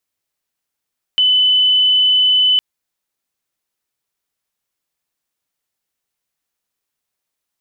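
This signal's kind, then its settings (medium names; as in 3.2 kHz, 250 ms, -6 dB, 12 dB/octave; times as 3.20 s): tone sine 3.01 kHz -9.5 dBFS 1.41 s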